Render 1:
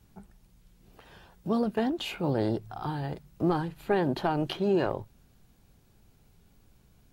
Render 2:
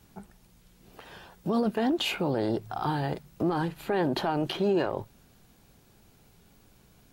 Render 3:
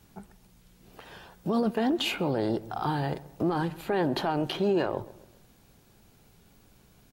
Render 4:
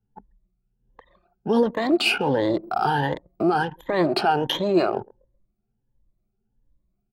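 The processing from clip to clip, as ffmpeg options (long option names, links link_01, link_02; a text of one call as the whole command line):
ffmpeg -i in.wav -af "lowshelf=frequency=130:gain=-9.5,alimiter=level_in=0.5dB:limit=-24dB:level=0:latency=1:release=38,volume=-0.5dB,volume=6.5dB" out.wav
ffmpeg -i in.wav -filter_complex "[0:a]asplit=2[link_01][link_02];[link_02]adelay=133,lowpass=frequency=1600:poles=1,volume=-18dB,asplit=2[link_03][link_04];[link_04]adelay=133,lowpass=frequency=1600:poles=1,volume=0.44,asplit=2[link_05][link_06];[link_06]adelay=133,lowpass=frequency=1600:poles=1,volume=0.44,asplit=2[link_07][link_08];[link_08]adelay=133,lowpass=frequency=1600:poles=1,volume=0.44[link_09];[link_01][link_03][link_05][link_07][link_09]amix=inputs=5:normalize=0" out.wav
ffmpeg -i in.wav -af "afftfilt=real='re*pow(10,14/40*sin(2*PI*(1.1*log(max(b,1)*sr/1024/100)/log(2)-(1.4)*(pts-256)/sr)))':imag='im*pow(10,14/40*sin(2*PI*(1.1*log(max(b,1)*sr/1024/100)/log(2)-(1.4)*(pts-256)/sr)))':win_size=1024:overlap=0.75,lowshelf=frequency=220:gain=-9,anlmdn=1,volume=6dB" out.wav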